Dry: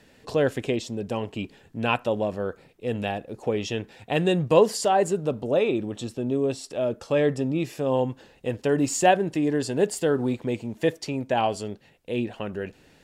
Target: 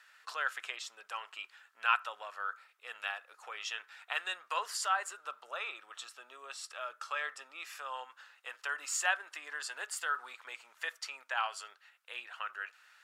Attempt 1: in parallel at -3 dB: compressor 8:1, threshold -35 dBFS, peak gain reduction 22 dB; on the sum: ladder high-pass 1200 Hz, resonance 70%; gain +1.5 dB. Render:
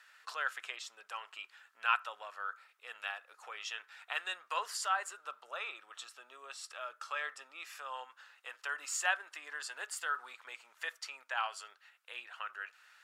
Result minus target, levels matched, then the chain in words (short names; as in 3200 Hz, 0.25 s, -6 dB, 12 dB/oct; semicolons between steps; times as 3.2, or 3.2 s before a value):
compressor: peak gain reduction +9 dB
in parallel at -3 dB: compressor 8:1, threshold -24.5 dBFS, peak gain reduction 13 dB; on the sum: ladder high-pass 1200 Hz, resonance 70%; gain +1.5 dB